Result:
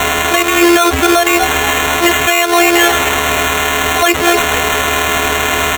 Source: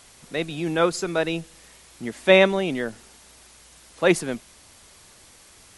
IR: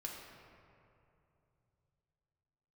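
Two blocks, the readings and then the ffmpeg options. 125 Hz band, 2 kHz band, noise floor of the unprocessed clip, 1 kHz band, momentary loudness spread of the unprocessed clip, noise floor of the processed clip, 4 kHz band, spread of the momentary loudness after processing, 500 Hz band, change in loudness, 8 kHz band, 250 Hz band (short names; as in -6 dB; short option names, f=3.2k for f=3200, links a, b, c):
+8.5 dB, +17.0 dB, -51 dBFS, +20.5 dB, 17 LU, -15 dBFS, +18.0 dB, 4 LU, +8.5 dB, +12.0 dB, +22.5 dB, +12.5 dB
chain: -filter_complex "[0:a]aeval=exprs='val(0)+0.5*0.0398*sgn(val(0))':c=same,afftfilt=real='hypot(re,im)*cos(PI*b)':imag='0':win_size=512:overlap=0.75,highpass=180,acrossover=split=510 6000:gain=0.112 1 0.1[a][b][c];[a][b][c]amix=inputs=3:normalize=0,asplit=2[d][e];[e]asplit=4[f][g][h][i];[f]adelay=236,afreqshift=69,volume=-19.5dB[j];[g]adelay=472,afreqshift=138,volume=-24.7dB[k];[h]adelay=708,afreqshift=207,volume=-29.9dB[l];[i]adelay=944,afreqshift=276,volume=-35.1dB[m];[j][k][l][m]amix=inputs=4:normalize=0[n];[d][n]amix=inputs=2:normalize=0,acompressor=threshold=-35dB:ratio=10,equalizer=f=9.9k:t=o:w=0.22:g=3,aeval=exprs='val(0)+0.00158*sin(2*PI*430*n/s)':c=same,agate=range=-56dB:threshold=-52dB:ratio=16:detection=peak,acrusher=samples=9:mix=1:aa=0.000001,alimiter=level_in=35.5dB:limit=-1dB:release=50:level=0:latency=1,volume=-1dB"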